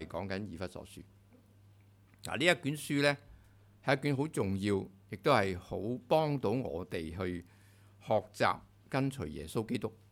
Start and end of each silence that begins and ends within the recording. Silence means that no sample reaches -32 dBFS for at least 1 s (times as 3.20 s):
0.79–2.25 s